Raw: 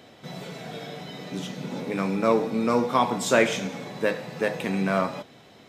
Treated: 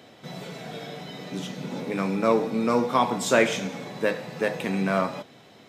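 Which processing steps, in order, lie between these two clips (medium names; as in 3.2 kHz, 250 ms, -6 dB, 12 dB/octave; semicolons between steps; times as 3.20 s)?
high-pass 83 Hz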